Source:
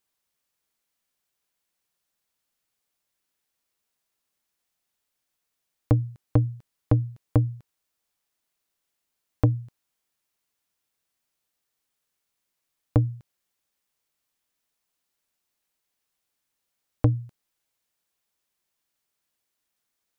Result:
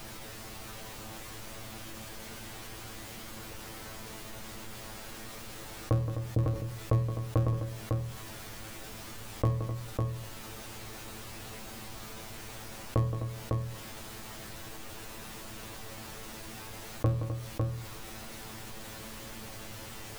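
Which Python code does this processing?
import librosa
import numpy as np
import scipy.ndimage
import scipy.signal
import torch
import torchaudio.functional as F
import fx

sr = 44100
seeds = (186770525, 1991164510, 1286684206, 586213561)

p1 = fx.cycle_switch(x, sr, every=3, mode='muted')
p2 = fx.small_body(p1, sr, hz=(540.0, 1100.0), ring_ms=45, db=13)
p3 = fx.dmg_noise_colour(p2, sr, seeds[0], colour='pink', level_db=-56.0)
p4 = fx.comb_fb(p3, sr, f0_hz=110.0, decay_s=0.21, harmonics='all', damping=0.0, mix_pct=90)
p5 = p4 + fx.echo_multitap(p4, sr, ms=(171, 256, 552), db=(-18.0, -19.0, -7.5), dry=0)
p6 = fx.env_flatten(p5, sr, amount_pct=50)
y = p6 * librosa.db_to_amplitude(-1.5)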